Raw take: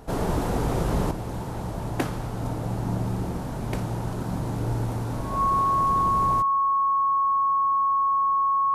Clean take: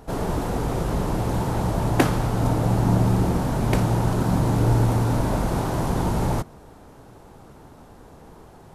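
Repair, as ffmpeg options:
-af "bandreject=f=1100:w=30,asetnsamples=n=441:p=0,asendcmd='1.11 volume volume 8dB',volume=1"

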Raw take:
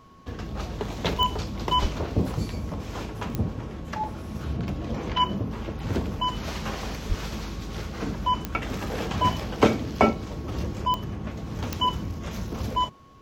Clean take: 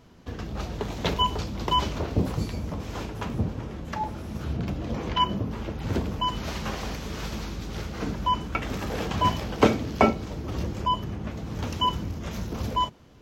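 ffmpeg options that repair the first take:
-filter_complex "[0:a]adeclick=t=4,bandreject=f=1100:w=30,asplit=3[s0][s1][s2];[s0]afade=t=out:st=1.81:d=0.02[s3];[s1]highpass=f=140:w=0.5412,highpass=f=140:w=1.3066,afade=t=in:st=1.81:d=0.02,afade=t=out:st=1.93:d=0.02[s4];[s2]afade=t=in:st=1.93:d=0.02[s5];[s3][s4][s5]amix=inputs=3:normalize=0,asplit=3[s6][s7][s8];[s6]afade=t=out:st=7.08:d=0.02[s9];[s7]highpass=f=140:w=0.5412,highpass=f=140:w=1.3066,afade=t=in:st=7.08:d=0.02,afade=t=out:st=7.2:d=0.02[s10];[s8]afade=t=in:st=7.2:d=0.02[s11];[s9][s10][s11]amix=inputs=3:normalize=0"

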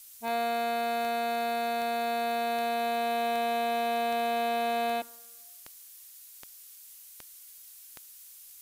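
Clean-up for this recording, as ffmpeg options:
-af "adeclick=t=4,afftdn=nr=28:nf=-51"

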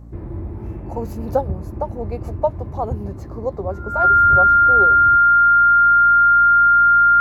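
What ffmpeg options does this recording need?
-af "bandreject=f=57.3:t=h:w=4,bandreject=f=114.6:t=h:w=4,bandreject=f=171.9:t=h:w=4,bandreject=f=229.2:t=h:w=4,bandreject=f=286.5:t=h:w=4,bandreject=f=1400:w=30"

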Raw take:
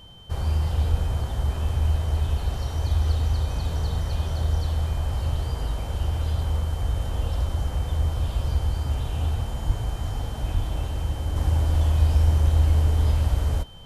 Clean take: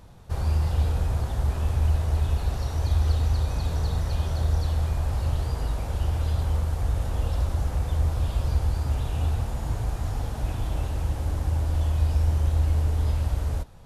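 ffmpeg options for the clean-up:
-filter_complex "[0:a]bandreject=f=3100:w=30,asplit=3[s0][s1][s2];[s0]afade=t=out:st=0.9:d=0.02[s3];[s1]highpass=f=140:w=0.5412,highpass=f=140:w=1.3066,afade=t=in:st=0.9:d=0.02,afade=t=out:st=1.02:d=0.02[s4];[s2]afade=t=in:st=1.02:d=0.02[s5];[s3][s4][s5]amix=inputs=3:normalize=0,asplit=3[s6][s7][s8];[s6]afade=t=out:st=9.66:d=0.02[s9];[s7]highpass=f=140:w=0.5412,highpass=f=140:w=1.3066,afade=t=in:st=9.66:d=0.02,afade=t=out:st=9.78:d=0.02[s10];[s8]afade=t=in:st=9.78:d=0.02[s11];[s9][s10][s11]amix=inputs=3:normalize=0,asplit=3[s12][s13][s14];[s12]afade=t=out:st=10.53:d=0.02[s15];[s13]highpass=f=140:w=0.5412,highpass=f=140:w=1.3066,afade=t=in:st=10.53:d=0.02,afade=t=out:st=10.65:d=0.02[s16];[s14]afade=t=in:st=10.65:d=0.02[s17];[s15][s16][s17]amix=inputs=3:normalize=0,asetnsamples=n=441:p=0,asendcmd='11.36 volume volume -3.5dB',volume=1"

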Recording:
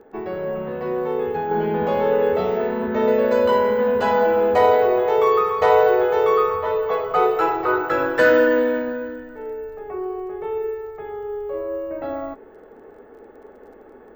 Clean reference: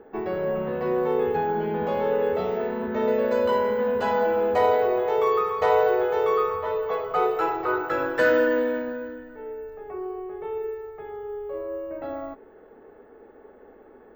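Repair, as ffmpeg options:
-af "adeclick=t=4,asetnsamples=n=441:p=0,asendcmd='1.51 volume volume -5dB',volume=1"

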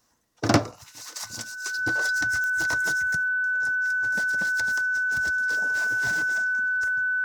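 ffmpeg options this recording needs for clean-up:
-af "adeclick=t=4,bandreject=f=1500:w=30"

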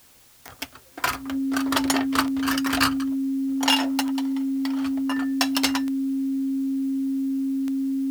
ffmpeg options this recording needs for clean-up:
-af "adeclick=t=4,bandreject=f=270:w=30,agate=range=0.0891:threshold=0.0158"

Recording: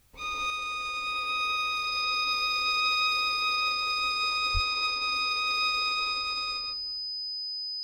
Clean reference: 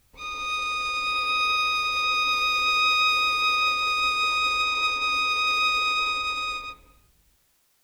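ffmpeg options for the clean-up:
-filter_complex "[0:a]bandreject=f=5000:w=30,asplit=3[s0][s1][s2];[s0]afade=t=out:st=4.53:d=0.02[s3];[s1]highpass=f=140:w=0.5412,highpass=f=140:w=1.3066,afade=t=in:st=4.53:d=0.02,afade=t=out:st=4.65:d=0.02[s4];[s2]afade=t=in:st=4.65:d=0.02[s5];[s3][s4][s5]amix=inputs=3:normalize=0,asetnsamples=n=441:p=0,asendcmd='0.5 volume volume 5.5dB',volume=1"

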